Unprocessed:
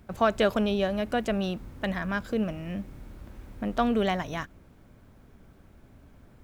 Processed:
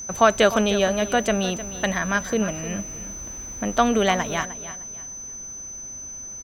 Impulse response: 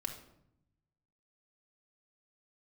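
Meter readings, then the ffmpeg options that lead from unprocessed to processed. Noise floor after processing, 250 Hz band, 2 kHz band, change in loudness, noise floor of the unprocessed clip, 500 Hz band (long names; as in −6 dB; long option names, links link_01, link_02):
−37 dBFS, +3.5 dB, +9.0 dB, +5.0 dB, −56 dBFS, +6.5 dB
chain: -af "lowshelf=frequency=430:gain=-7,aeval=exprs='val(0)+0.00891*sin(2*PI*6100*n/s)':channel_layout=same,aecho=1:1:306|612|918:0.2|0.0539|0.0145,volume=9dB"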